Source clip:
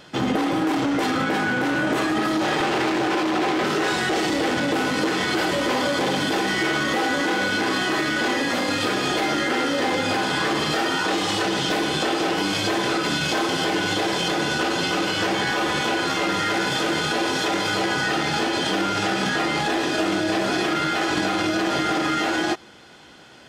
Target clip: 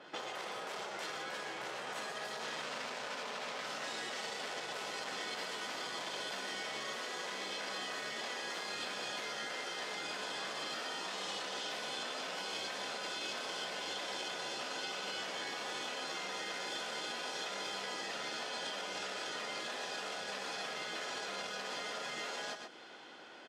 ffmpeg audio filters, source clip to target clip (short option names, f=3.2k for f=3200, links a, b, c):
-filter_complex "[0:a]areverse,acompressor=mode=upward:threshold=-46dB:ratio=2.5,areverse,aemphasis=mode=reproduction:type=75fm,afftfilt=real='re*lt(hypot(re,im),0.282)':imag='im*lt(hypot(re,im),0.282)':win_size=1024:overlap=0.75,highpass=350,asplit=2[a][b];[b]aecho=0:1:122:0.335[c];[a][c]amix=inputs=2:normalize=0,acrossover=split=540|5200[d][e][f];[d]acompressor=threshold=-45dB:ratio=4[g];[e]acompressor=threshold=-40dB:ratio=4[h];[f]acompressor=threshold=-48dB:ratio=4[i];[g][h][i]amix=inputs=3:normalize=0,adynamicequalizer=threshold=0.00251:dfrequency=2400:dqfactor=0.7:tfrequency=2400:tqfactor=0.7:attack=5:release=100:ratio=0.375:range=3:mode=boostabove:tftype=highshelf,volume=-5dB"